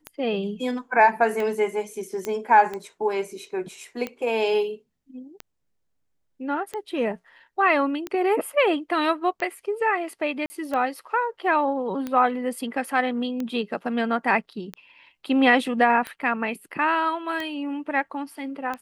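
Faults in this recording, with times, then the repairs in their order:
scratch tick 45 rpm −17 dBFS
0:02.25: click −15 dBFS
0:10.46–0:10.50: drop-out 40 ms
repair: click removal
repair the gap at 0:10.46, 40 ms

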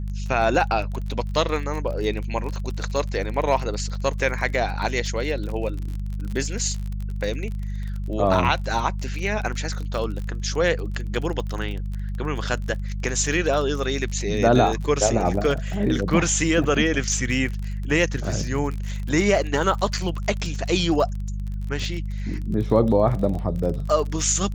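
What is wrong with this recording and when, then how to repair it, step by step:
surface crackle 34 per second −29 dBFS
mains hum 50 Hz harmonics 4 −28 dBFS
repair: click removal
hum removal 50 Hz, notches 4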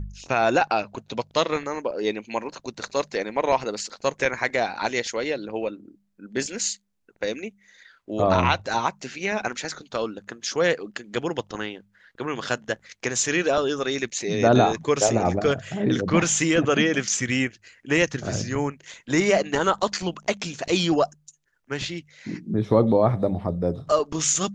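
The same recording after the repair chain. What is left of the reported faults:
none of them is left

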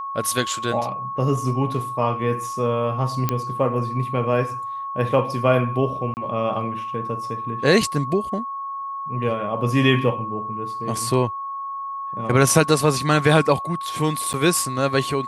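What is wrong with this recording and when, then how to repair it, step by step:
whistle 1,100 Hz −27 dBFS
0:03.29: click −7 dBFS
0:06.14–0:06.17: drop-out 29 ms
0:14.33–0:14.34: drop-out 9.2 ms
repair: click removal
notch filter 1,100 Hz, Q 30
repair the gap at 0:06.14, 29 ms
repair the gap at 0:14.33, 9.2 ms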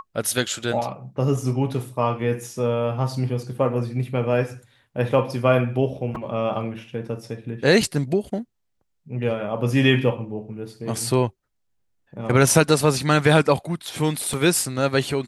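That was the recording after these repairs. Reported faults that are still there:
none of them is left

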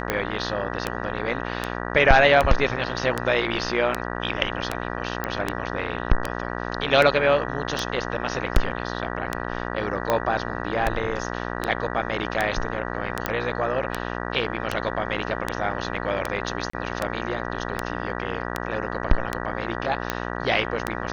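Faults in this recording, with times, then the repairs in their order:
mains buzz 60 Hz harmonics 32 −30 dBFS
scratch tick 78 rpm −8 dBFS
0:05.24: click −12 dBFS
0:13.26: click −8 dBFS
0:16.70–0:16.73: drop-out 34 ms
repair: click removal
hum removal 60 Hz, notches 32
repair the gap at 0:16.70, 34 ms

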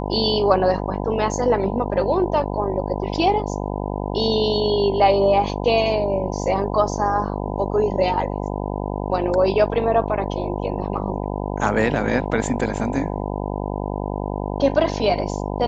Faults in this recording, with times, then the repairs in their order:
mains buzz 50 Hz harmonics 20 −26 dBFS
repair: hum removal 50 Hz, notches 20

